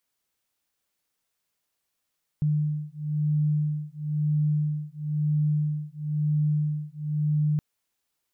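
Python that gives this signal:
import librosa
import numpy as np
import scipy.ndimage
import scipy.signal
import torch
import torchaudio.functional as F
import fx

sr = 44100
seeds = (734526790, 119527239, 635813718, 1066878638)

y = fx.two_tone_beats(sr, length_s=5.17, hz=150.0, beat_hz=1.0, level_db=-26.0)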